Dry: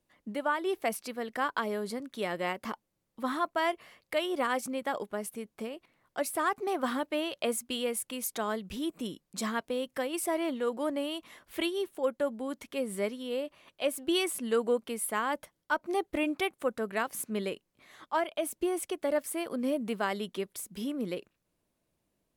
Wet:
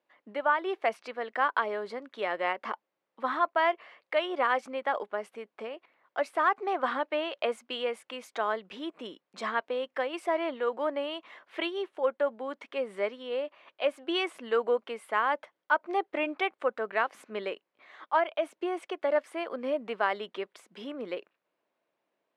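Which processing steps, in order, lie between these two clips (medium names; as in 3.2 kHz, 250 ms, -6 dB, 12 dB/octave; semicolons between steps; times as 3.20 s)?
band-pass 520–2500 Hz; trim +5 dB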